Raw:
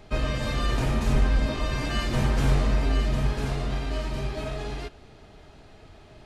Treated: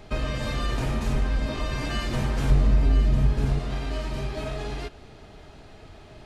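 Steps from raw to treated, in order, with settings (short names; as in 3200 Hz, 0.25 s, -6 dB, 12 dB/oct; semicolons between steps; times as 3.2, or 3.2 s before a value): 2.5–3.59 low shelf 330 Hz +10 dB; compressor 1.5:1, threshold -34 dBFS, peak gain reduction 9 dB; gain +3 dB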